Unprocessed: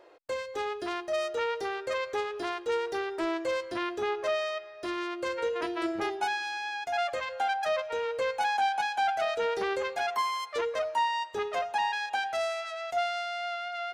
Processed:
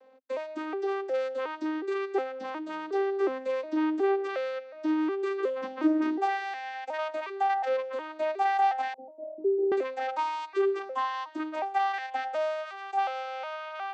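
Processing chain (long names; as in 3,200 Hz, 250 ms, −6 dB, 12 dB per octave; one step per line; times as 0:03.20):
vocoder with an arpeggio as carrier minor triad, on C4, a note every 363 ms
0:08.94–0:09.72: Butterworth low-pass 510 Hz 36 dB per octave
level +2.5 dB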